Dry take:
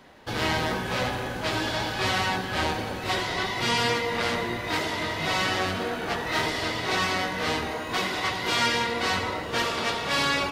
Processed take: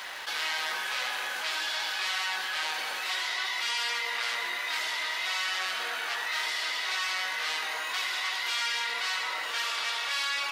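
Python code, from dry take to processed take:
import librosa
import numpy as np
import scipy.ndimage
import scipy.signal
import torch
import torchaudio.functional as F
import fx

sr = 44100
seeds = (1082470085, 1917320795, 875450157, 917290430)

y = scipy.signal.sosfilt(scipy.signal.butter(2, 1400.0, 'highpass', fs=sr, output='sos'), x)
y = fx.dmg_crackle(y, sr, seeds[0], per_s=160.0, level_db=-54.0)
y = fx.env_flatten(y, sr, amount_pct=70)
y = y * librosa.db_to_amplitude(-5.0)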